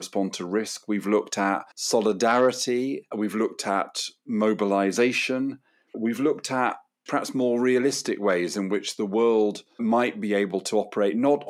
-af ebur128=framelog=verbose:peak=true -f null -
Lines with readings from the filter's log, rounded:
Integrated loudness:
  I:         -24.8 LUFS
  Threshold: -34.9 LUFS
Loudness range:
  LRA:         1.4 LU
  Threshold: -44.9 LUFS
  LRA low:   -25.6 LUFS
  LRA high:  -24.2 LUFS
True peak:
  Peak:       -8.3 dBFS